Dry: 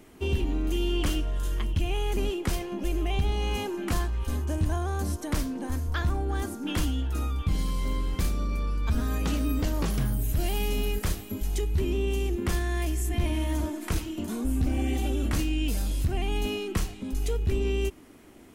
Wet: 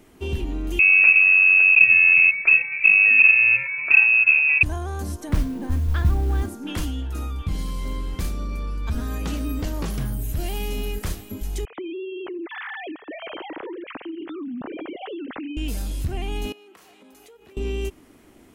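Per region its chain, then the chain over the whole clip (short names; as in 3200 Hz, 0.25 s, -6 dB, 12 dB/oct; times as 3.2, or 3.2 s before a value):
0.79–4.63 tilt -2.5 dB/oct + companded quantiser 6-bit + inverted band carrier 2600 Hz
5.29–6.49 modulation noise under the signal 18 dB + tone controls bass +8 dB, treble -7 dB
11.65–15.57 sine-wave speech + compressor, threshold -30 dBFS
16.52–17.57 HPF 520 Hz + bell 6600 Hz -7.5 dB 2.6 oct + compressor 10:1, threshold -46 dBFS
whole clip: dry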